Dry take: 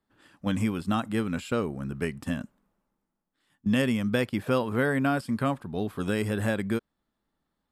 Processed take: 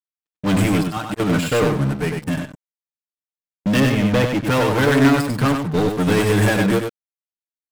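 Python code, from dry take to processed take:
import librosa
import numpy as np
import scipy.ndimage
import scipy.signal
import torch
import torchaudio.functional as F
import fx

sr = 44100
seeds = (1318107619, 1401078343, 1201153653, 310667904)

p1 = x + 0.82 * np.pad(x, (int(6.6 * sr / 1000.0), 0))[:len(x)]
p2 = fx.auto_swell(p1, sr, attack_ms=272.0, at=(0.79, 1.2))
p3 = fx.level_steps(p2, sr, step_db=10, at=(1.96, 2.43))
p4 = fx.air_absorb(p3, sr, metres=300.0, at=(3.8, 4.45))
p5 = np.sign(p4) * np.maximum(np.abs(p4) - 10.0 ** (-48.0 / 20.0), 0.0)
p6 = fx.leveller(p5, sr, passes=5)
p7 = p6 + fx.echo_single(p6, sr, ms=97, db=-4.0, dry=0)
y = fx.upward_expand(p7, sr, threshold_db=-38.0, expansion=1.5)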